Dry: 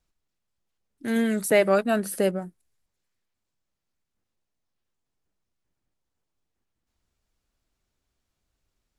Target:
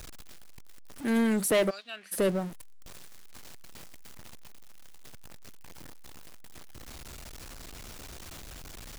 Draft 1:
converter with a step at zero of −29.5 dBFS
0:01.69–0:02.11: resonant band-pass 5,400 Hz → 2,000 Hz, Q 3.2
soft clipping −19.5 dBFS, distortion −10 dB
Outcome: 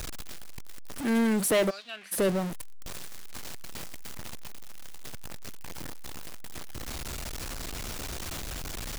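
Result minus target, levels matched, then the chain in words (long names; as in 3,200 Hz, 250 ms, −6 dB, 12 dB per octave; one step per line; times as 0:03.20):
converter with a step at zero: distortion +8 dB
converter with a step at zero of −38 dBFS
0:01.69–0:02.11: resonant band-pass 5,400 Hz → 2,000 Hz, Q 3.2
soft clipping −19.5 dBFS, distortion −10 dB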